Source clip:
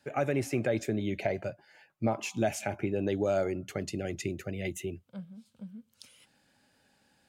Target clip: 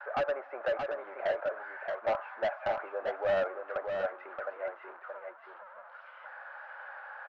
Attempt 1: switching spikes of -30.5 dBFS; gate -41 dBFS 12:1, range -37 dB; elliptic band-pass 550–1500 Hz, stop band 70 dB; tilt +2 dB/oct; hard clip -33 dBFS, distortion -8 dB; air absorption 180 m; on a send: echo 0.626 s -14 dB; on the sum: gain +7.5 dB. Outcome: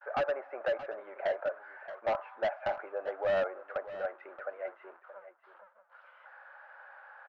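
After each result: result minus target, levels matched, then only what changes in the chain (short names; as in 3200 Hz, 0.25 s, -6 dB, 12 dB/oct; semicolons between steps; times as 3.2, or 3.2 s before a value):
echo-to-direct -8.5 dB; switching spikes: distortion -6 dB
change: echo 0.626 s -5.5 dB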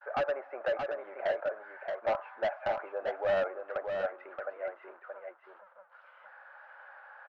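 switching spikes: distortion -6 dB
change: switching spikes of -24 dBFS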